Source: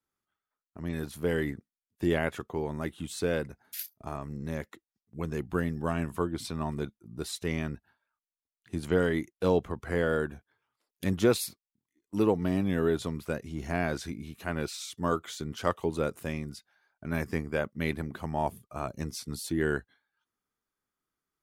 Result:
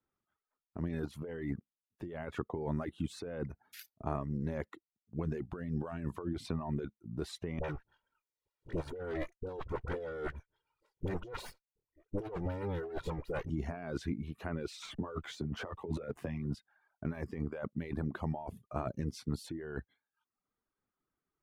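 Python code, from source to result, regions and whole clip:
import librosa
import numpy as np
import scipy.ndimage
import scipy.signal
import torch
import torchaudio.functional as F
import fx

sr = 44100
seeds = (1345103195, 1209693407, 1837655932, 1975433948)

y = fx.chain(x, sr, fx.lower_of_two(delay_ms=2.1),
    fx.dispersion(late='highs', ms=48.0, hz=740.0),
    fx.band_squash(depth_pct=40), at=(7.59, 13.5))
y = fx.chain(y, sr, fx.doubler(ms=14.0, db=-4),
    fx.backlash(play_db=-49.5),
    fx.band_squash(depth_pct=40), at=(14.82, 16.55))
y = fx.over_compress(y, sr, threshold_db=-35.0, ratio=-1.0)
y = fx.dereverb_blind(y, sr, rt60_s=0.72)
y = fx.lowpass(y, sr, hz=1100.0, slope=6)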